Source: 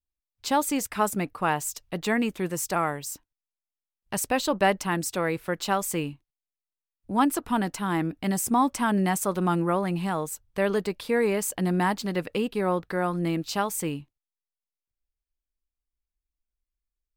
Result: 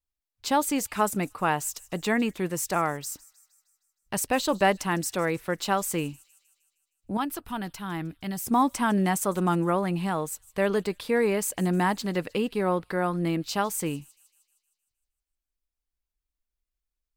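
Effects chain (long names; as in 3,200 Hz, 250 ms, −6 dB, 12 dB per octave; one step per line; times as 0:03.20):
0:07.17–0:08.47: graphic EQ with 10 bands 250 Hz −8 dB, 500 Hz −7 dB, 1,000 Hz −5 dB, 2,000 Hz −4 dB, 8,000 Hz −9 dB
on a send: delay with a high-pass on its return 155 ms, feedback 56%, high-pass 4,000 Hz, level −19 dB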